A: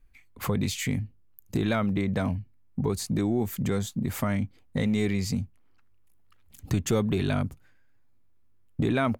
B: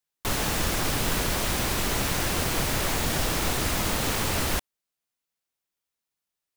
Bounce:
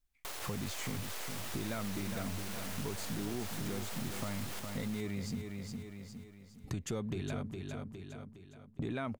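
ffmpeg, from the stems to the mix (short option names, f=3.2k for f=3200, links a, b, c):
-filter_complex "[0:a]lowpass=11k,agate=range=-15dB:threshold=-44dB:ratio=16:detection=peak,volume=-5.5dB,asplit=2[a][b];[b]volume=-8dB[c];[1:a]highpass=f=410:w=0.5412,highpass=f=410:w=1.3066,alimiter=level_in=3.5dB:limit=-24dB:level=0:latency=1,volume=-3.5dB,aeval=exprs='max(val(0),0)':c=same,volume=1dB,asplit=2[d][e];[e]volume=-4dB[f];[c][f]amix=inputs=2:normalize=0,aecho=0:1:411|822|1233|1644|2055|2466:1|0.4|0.16|0.064|0.0256|0.0102[g];[a][d][g]amix=inputs=3:normalize=0,acompressor=threshold=-40dB:ratio=2"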